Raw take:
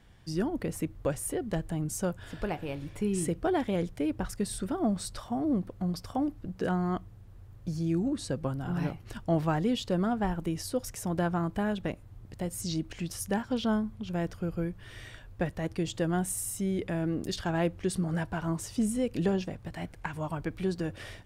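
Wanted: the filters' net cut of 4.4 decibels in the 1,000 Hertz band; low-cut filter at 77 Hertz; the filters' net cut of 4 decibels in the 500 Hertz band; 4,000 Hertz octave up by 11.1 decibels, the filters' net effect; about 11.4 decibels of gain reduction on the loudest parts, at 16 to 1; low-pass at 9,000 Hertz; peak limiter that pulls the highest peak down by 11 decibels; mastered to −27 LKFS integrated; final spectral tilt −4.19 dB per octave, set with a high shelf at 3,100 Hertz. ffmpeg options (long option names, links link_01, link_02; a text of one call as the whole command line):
ffmpeg -i in.wav -af "highpass=77,lowpass=9000,equalizer=frequency=500:width_type=o:gain=-4.5,equalizer=frequency=1000:width_type=o:gain=-5.5,highshelf=frequency=3100:gain=8.5,equalizer=frequency=4000:width_type=o:gain=8,acompressor=threshold=-33dB:ratio=16,volume=14dB,alimiter=limit=-18dB:level=0:latency=1" out.wav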